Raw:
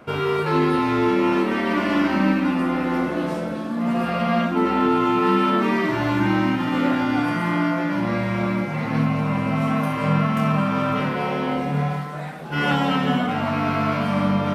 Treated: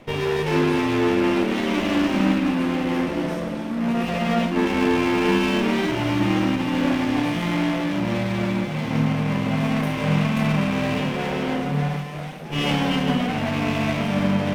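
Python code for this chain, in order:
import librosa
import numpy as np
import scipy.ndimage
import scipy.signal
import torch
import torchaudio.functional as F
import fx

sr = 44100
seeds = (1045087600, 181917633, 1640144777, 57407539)

y = fx.lower_of_two(x, sr, delay_ms=0.34)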